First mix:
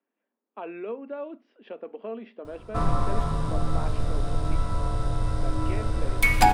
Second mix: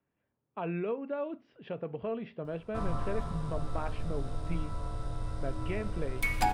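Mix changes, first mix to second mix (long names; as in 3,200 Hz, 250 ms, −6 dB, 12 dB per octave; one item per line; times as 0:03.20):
speech: remove elliptic high-pass filter 220 Hz, stop band 40 dB
background −10.0 dB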